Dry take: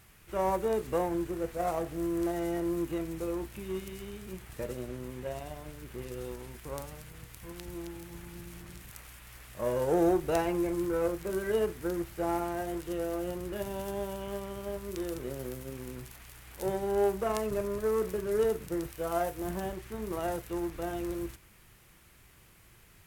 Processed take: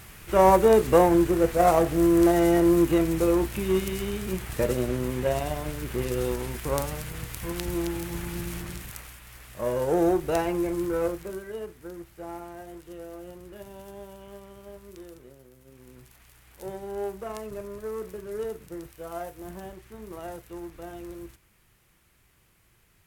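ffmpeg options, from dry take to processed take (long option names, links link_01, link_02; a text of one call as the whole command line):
ffmpeg -i in.wav -af "volume=23dB,afade=type=out:start_time=8.52:duration=0.67:silence=0.354813,afade=type=out:start_time=11.04:duration=0.42:silence=0.298538,afade=type=out:start_time=14.86:duration=0.64:silence=0.375837,afade=type=in:start_time=15.5:duration=0.73:silence=0.281838" out.wav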